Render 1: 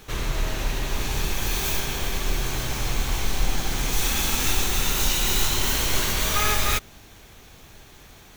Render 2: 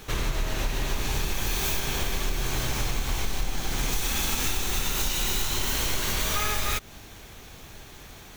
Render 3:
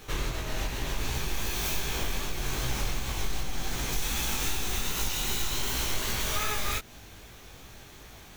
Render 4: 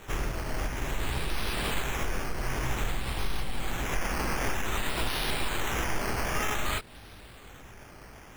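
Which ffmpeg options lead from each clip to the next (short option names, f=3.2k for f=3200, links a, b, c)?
-af "acompressor=threshold=-25dB:ratio=6,volume=2.5dB"
-af "flanger=delay=16.5:depth=5.7:speed=2.6"
-af "acrusher=samples=9:mix=1:aa=0.000001:lfo=1:lforange=5.4:lforate=0.53"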